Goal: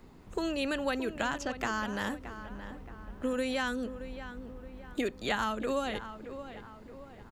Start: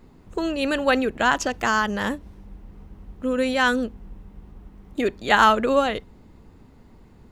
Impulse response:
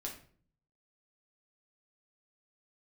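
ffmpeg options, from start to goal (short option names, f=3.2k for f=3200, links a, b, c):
-filter_complex "[0:a]lowshelf=f=440:g=-4.5,acrossover=split=230|5100[a][b][c];[a]acompressor=threshold=-39dB:ratio=4[d];[b]acompressor=threshold=-32dB:ratio=4[e];[c]acompressor=threshold=-50dB:ratio=4[f];[d][e][f]amix=inputs=3:normalize=0,asplit=2[g][h];[h]adelay=623,lowpass=f=2.3k:p=1,volume=-11dB,asplit=2[i][j];[j]adelay=623,lowpass=f=2.3k:p=1,volume=0.48,asplit=2[k][l];[l]adelay=623,lowpass=f=2.3k:p=1,volume=0.48,asplit=2[m][n];[n]adelay=623,lowpass=f=2.3k:p=1,volume=0.48,asplit=2[o][p];[p]adelay=623,lowpass=f=2.3k:p=1,volume=0.48[q];[i][k][m][o][q]amix=inputs=5:normalize=0[r];[g][r]amix=inputs=2:normalize=0"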